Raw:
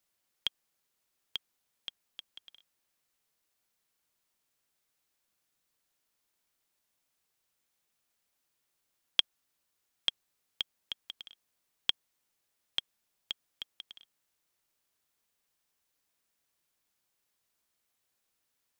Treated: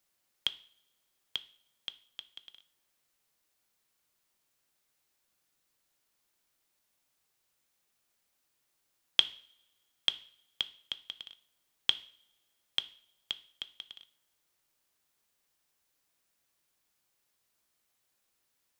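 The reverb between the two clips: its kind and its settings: two-slope reverb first 0.48 s, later 1.6 s, from -24 dB, DRR 12 dB; gain +2 dB

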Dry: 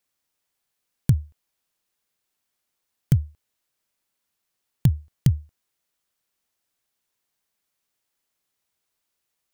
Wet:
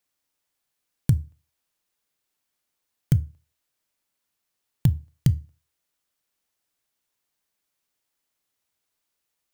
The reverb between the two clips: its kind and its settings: FDN reverb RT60 0.33 s, low-frequency decay 1.05×, high-frequency decay 0.85×, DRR 15.5 dB; gain -1 dB

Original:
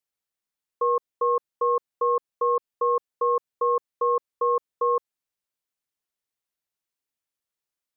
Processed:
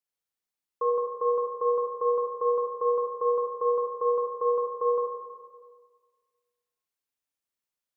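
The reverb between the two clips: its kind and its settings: Schroeder reverb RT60 1.6 s, combs from 31 ms, DRR 0.5 dB; gain -4.5 dB

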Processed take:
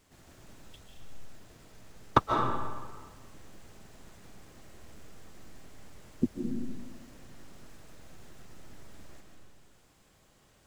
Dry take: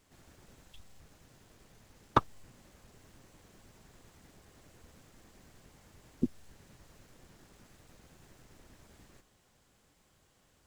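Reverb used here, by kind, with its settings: digital reverb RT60 1.5 s, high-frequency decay 0.7×, pre-delay 0.105 s, DRR 1 dB; gain +2.5 dB

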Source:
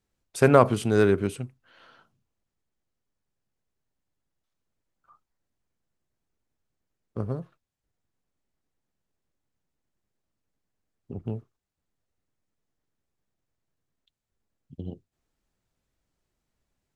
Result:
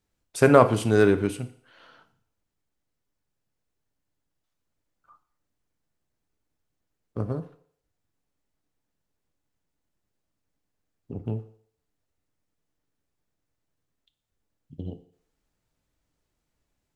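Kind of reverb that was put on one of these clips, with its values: FDN reverb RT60 0.59 s, low-frequency decay 0.75×, high-frequency decay 0.95×, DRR 9 dB; gain +1 dB

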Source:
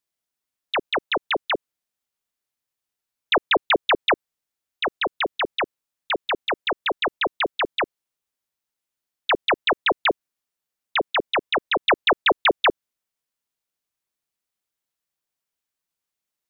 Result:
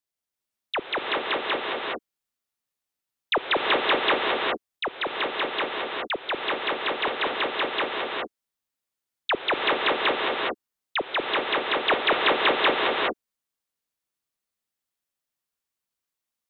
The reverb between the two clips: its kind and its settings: non-linear reverb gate 0.44 s rising, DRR -0.5 dB; gain -4.5 dB

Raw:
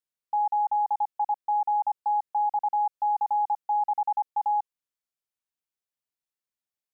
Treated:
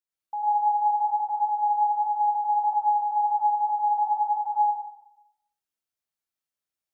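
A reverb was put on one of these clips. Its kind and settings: plate-style reverb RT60 0.82 s, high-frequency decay 0.9×, pre-delay 80 ms, DRR -6 dB; gain -5.5 dB

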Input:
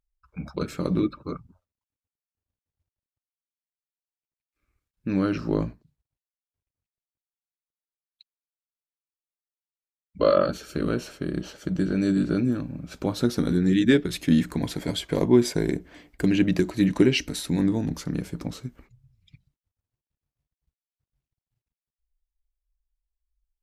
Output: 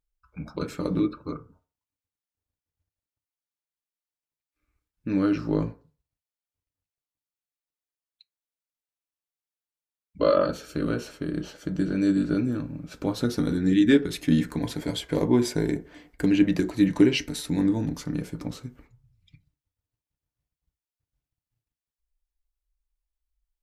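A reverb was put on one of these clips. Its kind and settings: FDN reverb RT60 0.37 s, low-frequency decay 0.75×, high-frequency decay 0.35×, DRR 7.5 dB; gain -2 dB

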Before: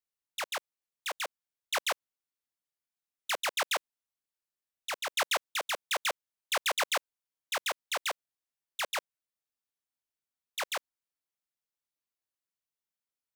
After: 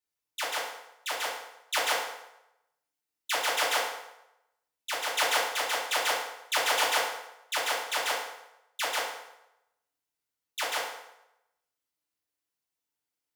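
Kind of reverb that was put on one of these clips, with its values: FDN reverb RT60 0.88 s, low-frequency decay 0.75×, high-frequency decay 0.8×, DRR -6.5 dB; gain -2.5 dB

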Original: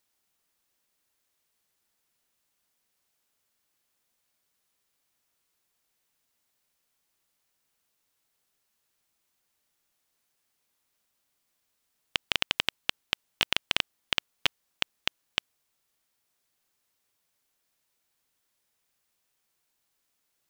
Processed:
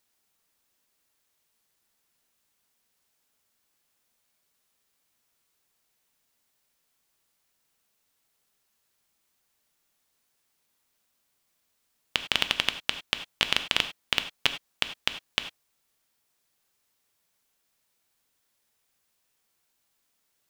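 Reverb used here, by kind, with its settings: non-linear reverb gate 0.12 s flat, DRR 9 dB; gain +2 dB

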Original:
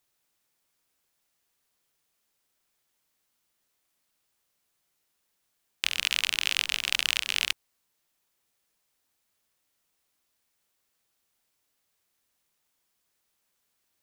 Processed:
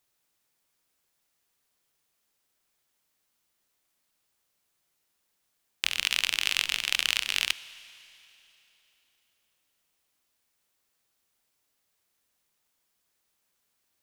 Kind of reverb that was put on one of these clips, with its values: Schroeder reverb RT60 3.3 s, DRR 16.5 dB

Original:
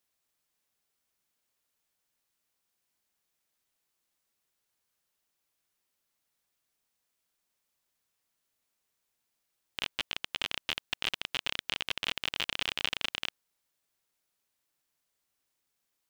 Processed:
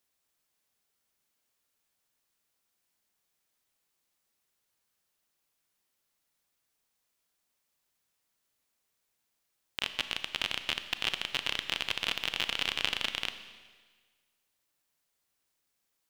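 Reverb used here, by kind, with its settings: Schroeder reverb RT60 1.5 s, combs from 28 ms, DRR 9.5 dB; gain +1 dB

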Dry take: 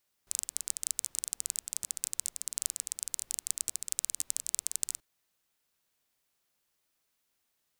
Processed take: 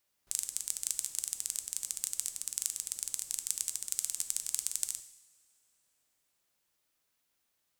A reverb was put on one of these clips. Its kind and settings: two-slope reverb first 0.78 s, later 3.1 s, from -21 dB, DRR 8.5 dB; gain -1 dB

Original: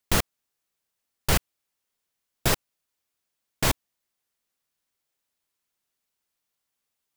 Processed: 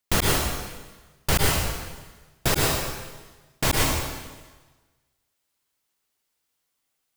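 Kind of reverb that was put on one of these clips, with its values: plate-style reverb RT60 1.3 s, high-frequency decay 0.95×, pre-delay 95 ms, DRR -3 dB

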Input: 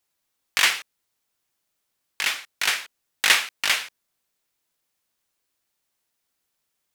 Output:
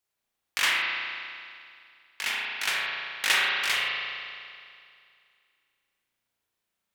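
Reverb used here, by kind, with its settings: spring tank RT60 2.3 s, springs 35 ms, chirp 30 ms, DRR -4.5 dB; gain -7.5 dB

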